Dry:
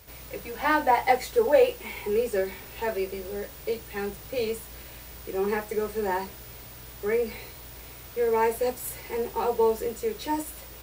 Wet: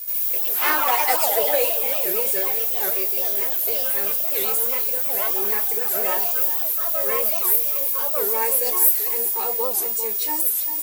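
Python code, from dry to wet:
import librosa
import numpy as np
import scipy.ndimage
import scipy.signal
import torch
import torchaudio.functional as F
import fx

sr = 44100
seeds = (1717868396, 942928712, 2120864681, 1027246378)

p1 = fx.riaa(x, sr, side='recording')
p2 = fx.cheby_harmonics(p1, sr, harmonics=(8,), levels_db=(-37,), full_scale_db=-7.5)
p3 = fx.high_shelf(p2, sr, hz=9500.0, db=11.0)
p4 = p3 + fx.echo_single(p3, sr, ms=394, db=-10.5, dry=0)
p5 = fx.echo_pitch(p4, sr, ms=80, semitones=3, count=3, db_per_echo=-3.0)
p6 = fx.record_warp(p5, sr, rpm=78.0, depth_cents=250.0)
y = p6 * librosa.db_to_amplitude(-2.0)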